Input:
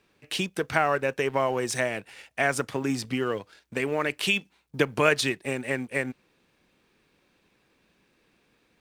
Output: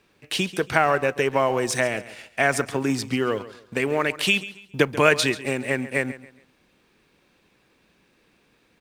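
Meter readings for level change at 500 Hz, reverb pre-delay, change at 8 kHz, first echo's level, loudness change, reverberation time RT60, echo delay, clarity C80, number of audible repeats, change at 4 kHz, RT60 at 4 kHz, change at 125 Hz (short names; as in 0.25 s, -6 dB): +4.0 dB, none, +4.0 dB, -16.0 dB, +4.0 dB, none, 0.138 s, none, 2, +4.0 dB, none, +4.0 dB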